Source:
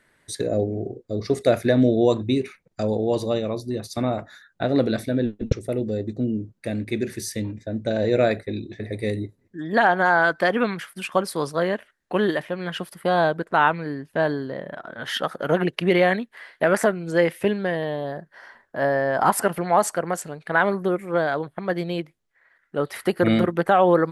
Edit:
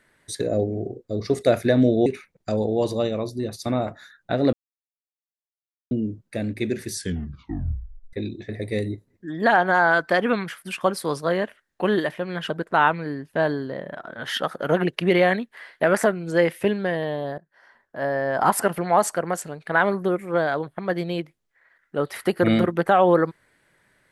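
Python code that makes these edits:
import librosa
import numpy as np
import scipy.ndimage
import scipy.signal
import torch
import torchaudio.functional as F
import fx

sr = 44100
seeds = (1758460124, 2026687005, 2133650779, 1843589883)

y = fx.edit(x, sr, fx.cut(start_s=2.06, length_s=0.31),
    fx.silence(start_s=4.84, length_s=1.38),
    fx.tape_stop(start_s=7.23, length_s=1.21),
    fx.cut(start_s=12.81, length_s=0.49),
    fx.fade_in_from(start_s=18.18, length_s=1.14, floor_db=-17.0), tone=tone)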